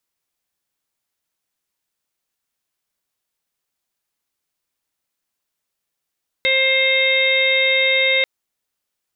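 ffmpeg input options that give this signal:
-f lavfi -i "aevalsrc='0.0891*sin(2*PI*529*t)+0.00891*sin(2*PI*1058*t)+0.0188*sin(2*PI*1587*t)+0.158*sin(2*PI*2116*t)+0.0562*sin(2*PI*2645*t)+0.0251*sin(2*PI*3174*t)+0.1*sin(2*PI*3703*t)':d=1.79:s=44100"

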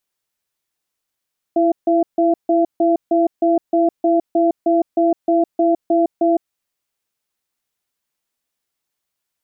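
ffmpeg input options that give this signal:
-f lavfi -i "aevalsrc='0.188*(sin(2*PI*333*t)+sin(2*PI*678*t))*clip(min(mod(t,0.31),0.16-mod(t,0.31))/0.005,0,1)':d=4.92:s=44100"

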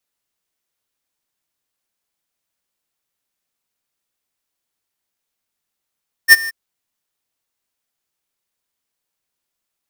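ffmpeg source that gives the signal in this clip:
-f lavfi -i "aevalsrc='0.708*(2*lt(mod(1810*t,1),0.5)-1)':d=0.231:s=44100,afade=t=in:d=0.045,afade=t=out:st=0.045:d=0.029:silence=0.0891,afade=t=out:st=0.21:d=0.021"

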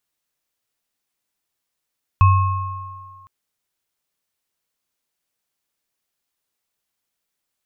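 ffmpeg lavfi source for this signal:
-f lavfi -i "aevalsrc='0.398*pow(10,-3*t/1.44)*sin(2*PI*95.1*t)+0.2*pow(10,-3*t/2.1)*sin(2*PI*1080*t)+0.0447*pow(10,-3*t/1.04)*sin(2*PI*2570*t)':d=1.06:s=44100"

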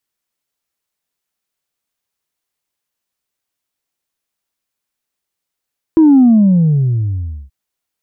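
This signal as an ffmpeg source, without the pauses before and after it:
-f lavfi -i "aevalsrc='0.596*clip((1.53-t)/1.33,0,1)*tanh(1*sin(2*PI*330*1.53/log(65/330)*(exp(log(65/330)*t/1.53)-1)))/tanh(1)':d=1.53:s=44100"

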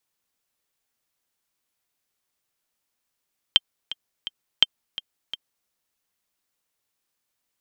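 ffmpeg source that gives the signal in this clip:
-f lavfi -i "aevalsrc='pow(10,(-1-16.5*gte(mod(t,3*60/169),60/169))/20)*sin(2*PI*3150*mod(t,60/169))*exp(-6.91*mod(t,60/169)/0.03)':d=2.13:s=44100"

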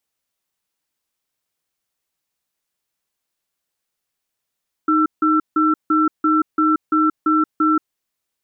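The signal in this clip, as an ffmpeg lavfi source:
-f lavfi -i "aevalsrc='0.168*(sin(2*PI*311*t)+sin(2*PI*1340*t))*clip(min(mod(t,0.34),0.18-mod(t,0.34))/0.005,0,1)':d=3.01:s=44100"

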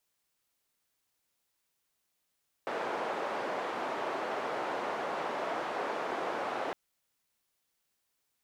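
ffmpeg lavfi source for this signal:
-f lavfi -i "anoisesrc=c=white:d=4.06:r=44100:seed=1,highpass=f=440,lowpass=f=840,volume=-13.6dB"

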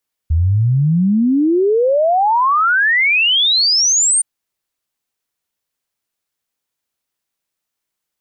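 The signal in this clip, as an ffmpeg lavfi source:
-f lavfi -i "aevalsrc='0.299*clip(min(t,3.92-t)/0.01,0,1)*sin(2*PI*76*3.92/log(9100/76)*(exp(log(9100/76)*t/3.92)-1))':d=3.92:s=44100"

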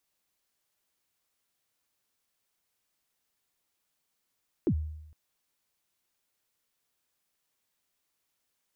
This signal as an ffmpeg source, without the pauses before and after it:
-f lavfi -i "aevalsrc='0.0944*pow(10,-3*t/0.87)*sin(2*PI*(410*0.071/log(77/410)*(exp(log(77/410)*min(t,0.071)/0.071)-1)+77*max(t-0.071,0)))':d=0.46:s=44100"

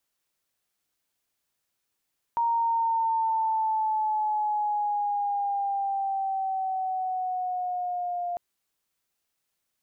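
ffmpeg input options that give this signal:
-f lavfi -i "aevalsrc='pow(10,(-21.5-6*t/6)/20)*sin(2*PI*935*6/(-5*log(2)/12)*(exp(-5*log(2)/12*t/6)-1))':d=6:s=44100"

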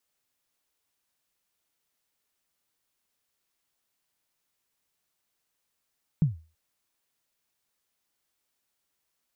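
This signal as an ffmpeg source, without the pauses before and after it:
-f lavfi -i "aevalsrc='0.178*pow(10,-3*t/0.33)*sin(2*PI*(170*0.143/log(80/170)*(exp(log(80/170)*min(t,0.143)/0.143)-1)+80*max(t-0.143,0)))':d=0.33:s=44100"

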